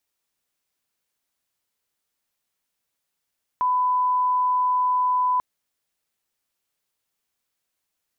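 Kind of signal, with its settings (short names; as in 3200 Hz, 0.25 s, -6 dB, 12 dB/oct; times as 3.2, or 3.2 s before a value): line-up tone -18 dBFS 1.79 s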